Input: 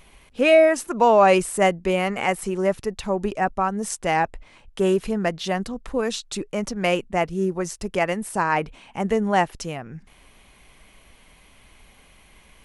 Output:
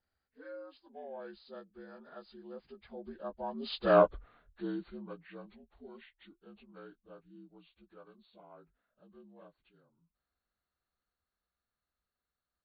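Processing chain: frequency axis rescaled in octaves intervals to 77%; Doppler pass-by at 3.99 s, 17 m/s, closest 1.6 m

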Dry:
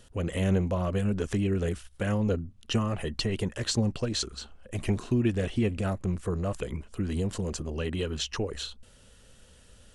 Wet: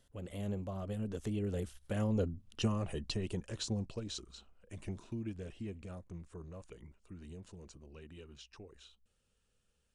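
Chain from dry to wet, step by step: Doppler pass-by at 2.40 s, 21 m/s, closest 18 m; dynamic bell 1.8 kHz, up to -6 dB, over -54 dBFS, Q 1.1; trim -5 dB

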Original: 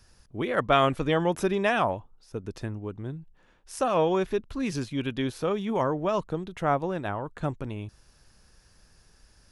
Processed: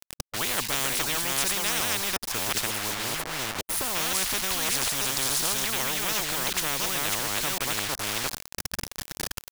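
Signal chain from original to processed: chunks repeated in reverse 361 ms, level -3 dB; 2.67–3.95 s: time-frequency box 1.1–8.7 kHz -25 dB; 4.89–5.64 s: FFT filter 1.2 kHz 0 dB, 2 kHz -23 dB, 5 kHz +9 dB; word length cut 8-bit, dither none; spectrum-flattening compressor 10:1

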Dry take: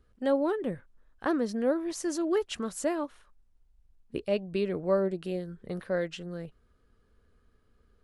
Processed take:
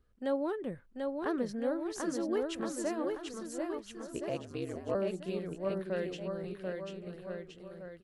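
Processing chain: bouncing-ball echo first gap 740 ms, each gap 0.85×, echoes 5; 4.29–4.95 s: ring modulator 71 Hz; trim -6 dB

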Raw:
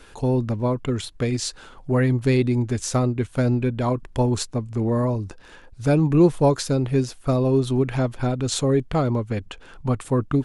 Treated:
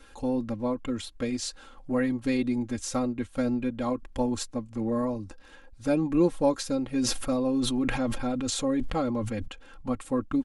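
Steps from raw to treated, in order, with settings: comb 3.7 ms, depth 78%; 6.95–9.48 s: decay stretcher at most 29 dB/s; trim -8 dB

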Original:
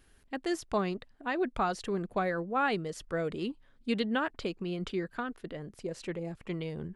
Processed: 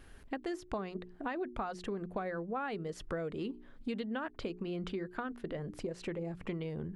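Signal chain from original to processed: treble shelf 3.1 kHz -9 dB; hum notches 60/120/180/240/300/360/420 Hz; compression 6:1, threshold -45 dBFS, peak gain reduction 18 dB; trim +9 dB

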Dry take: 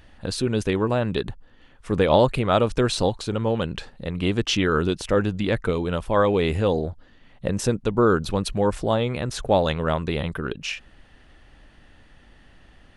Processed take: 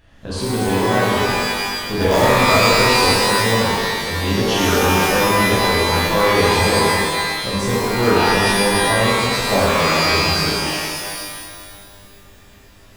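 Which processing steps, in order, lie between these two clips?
in parallel at -3.5 dB: integer overflow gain 8.5 dB; on the sum: pitch-shifted reverb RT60 1.8 s, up +12 st, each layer -2 dB, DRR -7.5 dB; trim -9.5 dB

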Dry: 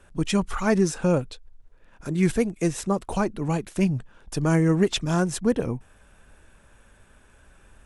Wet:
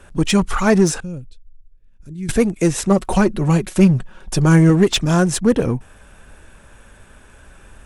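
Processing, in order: 1.00–2.29 s: amplifier tone stack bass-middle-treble 10-0-1; 2.90–4.70 s: comb 5.4 ms, depth 57%; in parallel at -3.5 dB: overload inside the chain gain 24.5 dB; on the sum: trim +5 dB

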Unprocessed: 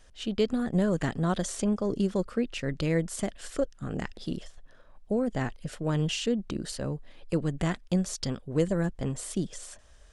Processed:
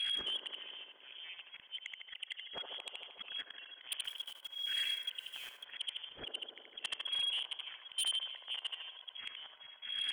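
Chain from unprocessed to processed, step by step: rattle on loud lows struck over -37 dBFS, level -24 dBFS; tremolo 1.7 Hz, depth 95%; level held to a coarse grid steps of 22 dB; inverted gate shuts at -37 dBFS, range -35 dB; LFO low-pass saw up 9.3 Hz 820–1700 Hz; frequency inversion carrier 3.3 kHz; 4.04–5.63 s: companded quantiser 8-bit; thinning echo 77 ms, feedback 34%, high-pass 370 Hz, level -8.5 dB; slow attack 307 ms; sine folder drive 12 dB, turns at -44 dBFS; on a send: feedback echo behind a band-pass 75 ms, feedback 84%, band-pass 620 Hz, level -4.5 dB; on the sum: trim +13.5 dB

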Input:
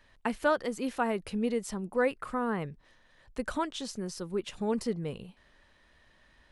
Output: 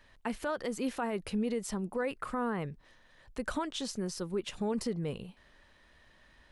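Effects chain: peak limiter -25.5 dBFS, peak gain reduction 10.5 dB; trim +1 dB

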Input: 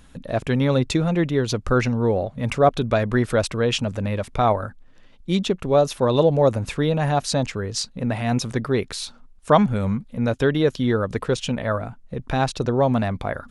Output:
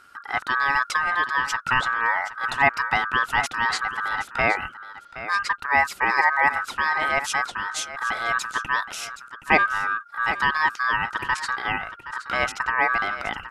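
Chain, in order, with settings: ring modulator 1.4 kHz; delay 771 ms -13.5 dB

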